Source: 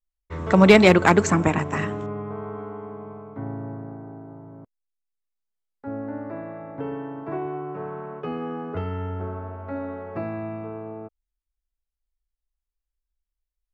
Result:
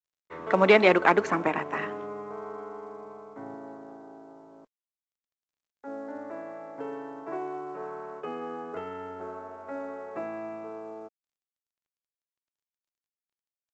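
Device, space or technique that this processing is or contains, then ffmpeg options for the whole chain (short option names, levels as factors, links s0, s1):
telephone: -filter_complex "[0:a]asettb=1/sr,asplit=3[s0][s1][s2];[s0]atrim=end=3.544[s3];[s1]atrim=start=3.54:end=6.15,asetpts=PTS-STARTPTS,afade=t=in:d=0.004:c=qsin,afade=t=out:st=2.606:d=0.004:c=qsin,highpass=160[s4];[s2]atrim=start=6.146[s5];[s3][s4]acrossfade=d=0.004:c1=hsin:c2=qsin[s6];[s6][s5]acrossfade=d=0.004:c1=qsin:c2=hsin,highpass=360,lowpass=3100,volume=0.75" -ar 16000 -c:a pcm_mulaw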